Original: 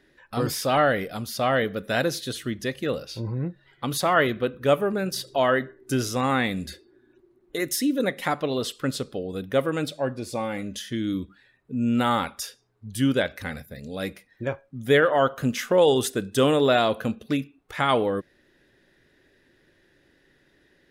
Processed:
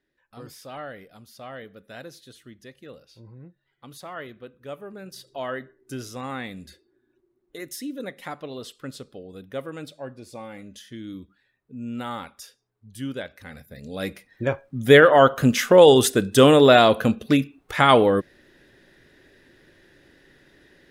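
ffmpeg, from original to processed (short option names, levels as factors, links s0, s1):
-af "volume=2.11,afade=t=in:st=4.73:d=0.77:silence=0.446684,afade=t=in:st=13.46:d=0.39:silence=0.375837,afade=t=in:st=13.85:d=1.01:silence=0.421697"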